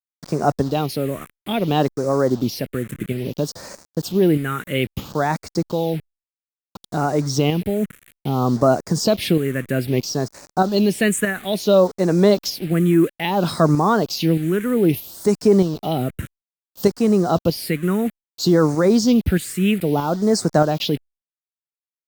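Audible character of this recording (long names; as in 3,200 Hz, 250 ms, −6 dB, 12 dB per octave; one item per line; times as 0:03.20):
tremolo saw up 1.6 Hz, depth 50%
a quantiser's noise floor 6 bits, dither none
phaser sweep stages 4, 0.6 Hz, lowest notch 790–3,000 Hz
Opus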